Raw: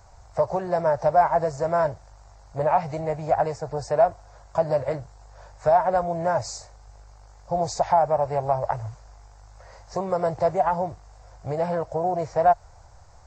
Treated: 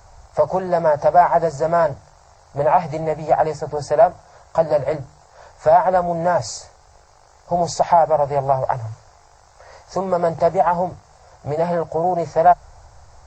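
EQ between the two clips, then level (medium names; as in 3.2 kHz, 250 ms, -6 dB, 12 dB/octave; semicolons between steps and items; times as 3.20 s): hum notches 50/100/150 Hz; hum notches 50/100/150/200/250/300 Hz; +5.5 dB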